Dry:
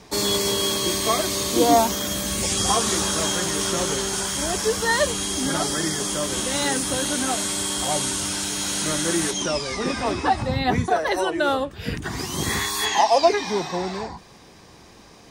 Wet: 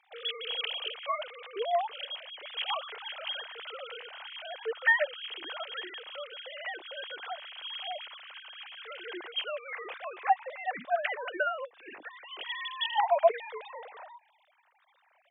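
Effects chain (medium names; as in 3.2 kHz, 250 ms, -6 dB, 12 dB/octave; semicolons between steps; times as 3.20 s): formants replaced by sine waves; high-pass 1.2 kHz 6 dB/octave; trim -6.5 dB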